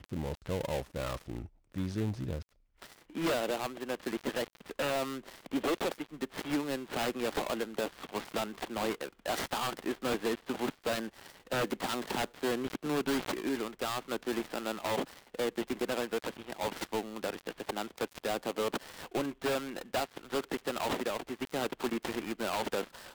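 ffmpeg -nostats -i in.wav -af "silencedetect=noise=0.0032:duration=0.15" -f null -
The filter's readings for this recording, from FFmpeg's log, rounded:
silence_start: 1.47
silence_end: 1.72 | silence_duration: 0.25
silence_start: 2.43
silence_end: 2.82 | silence_duration: 0.39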